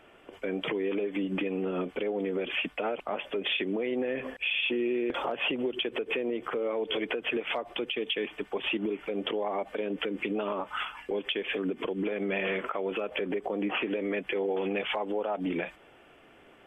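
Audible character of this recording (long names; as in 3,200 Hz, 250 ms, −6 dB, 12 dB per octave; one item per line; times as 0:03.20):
background noise floor −56 dBFS
spectral slope −2.0 dB per octave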